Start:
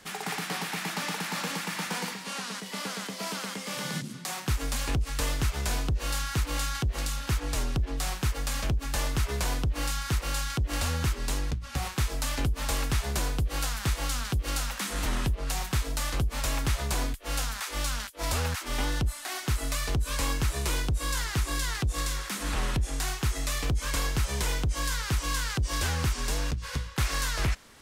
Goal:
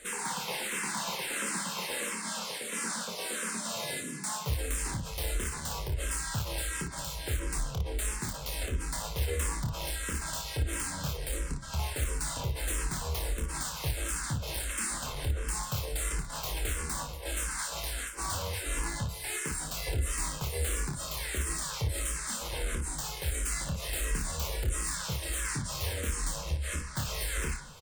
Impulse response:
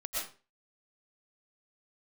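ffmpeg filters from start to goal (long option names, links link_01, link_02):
-filter_complex "[0:a]equalizer=frequency=7700:width=4.8:gain=14,aecho=1:1:2.2:0.4,acompressor=threshold=-33dB:ratio=1.5,asetrate=50951,aresample=44100,atempo=0.865537,aeval=exprs='(mod(10.6*val(0)+1,2)-1)/10.6':channel_layout=same,asplit=2[link_01][link_02];[link_02]asetrate=37084,aresample=44100,atempo=1.18921,volume=-4dB[link_03];[link_01][link_03]amix=inputs=2:normalize=0,asoftclip=type=tanh:threshold=-26dB,aecho=1:1:27|56:0.531|0.447,asplit=2[link_04][link_05];[1:a]atrim=start_sample=2205,asetrate=33516,aresample=44100,lowpass=5400[link_06];[link_05][link_06]afir=irnorm=-1:irlink=0,volume=-15.5dB[link_07];[link_04][link_07]amix=inputs=2:normalize=0,asplit=2[link_08][link_09];[link_09]afreqshift=-1.5[link_10];[link_08][link_10]amix=inputs=2:normalize=1"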